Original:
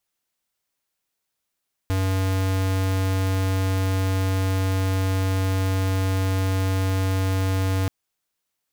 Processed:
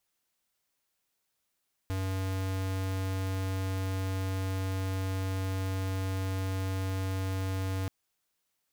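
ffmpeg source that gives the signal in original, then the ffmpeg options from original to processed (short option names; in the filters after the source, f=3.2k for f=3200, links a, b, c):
-f lavfi -i "aevalsrc='0.0794*(2*lt(mod(95.1*t,1),0.5)-1)':d=5.98:s=44100"
-af "asoftclip=type=hard:threshold=-32dB"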